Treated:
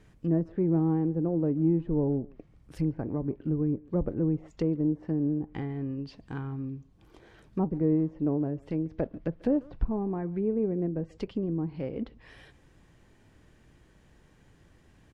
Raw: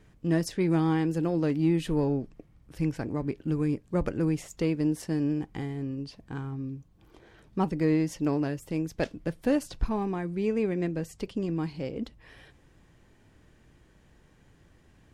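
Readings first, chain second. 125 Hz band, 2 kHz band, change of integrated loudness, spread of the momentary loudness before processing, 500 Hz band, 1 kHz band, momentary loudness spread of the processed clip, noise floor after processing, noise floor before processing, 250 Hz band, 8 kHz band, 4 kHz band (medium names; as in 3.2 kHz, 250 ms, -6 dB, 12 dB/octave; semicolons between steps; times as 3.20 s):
0.0 dB, -11.0 dB, -0.5 dB, 10 LU, -1.0 dB, -6.0 dB, 10 LU, -60 dBFS, -60 dBFS, 0.0 dB, under -20 dB, under -10 dB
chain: low-pass that closes with the level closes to 620 Hz, closed at -25.5 dBFS; speakerphone echo 140 ms, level -22 dB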